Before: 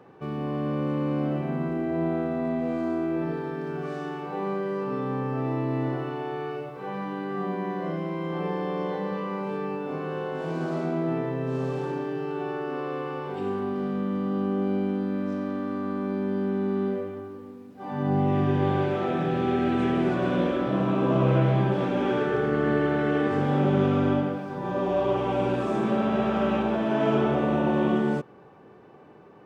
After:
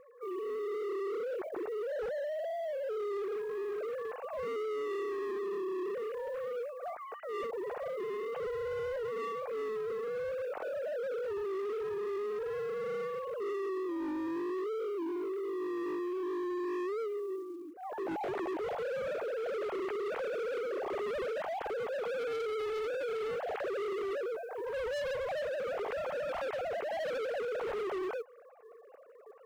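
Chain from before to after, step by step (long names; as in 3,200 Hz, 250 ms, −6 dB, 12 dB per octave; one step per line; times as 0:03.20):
three sine waves on the formant tracks
high-shelf EQ 2,300 Hz −9 dB
notch filter 980 Hz, Q 12
floating-point word with a short mantissa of 4 bits
gain into a clipping stage and back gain 29.5 dB
level −4.5 dB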